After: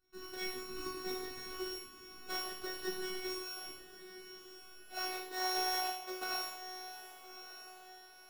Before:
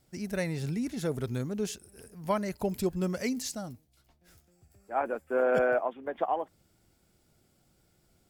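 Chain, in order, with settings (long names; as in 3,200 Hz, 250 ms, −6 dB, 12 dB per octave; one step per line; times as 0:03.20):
samples sorted by size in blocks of 32 samples
resonators tuned to a chord D3 minor, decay 0.41 s
reverb whose tail is shaped and stops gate 230 ms falling, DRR −2.5 dB
phases set to zero 370 Hz
on a send: feedback delay with all-pass diffusion 1,200 ms, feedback 40%, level −12 dB
on the sum: level +7.5 dB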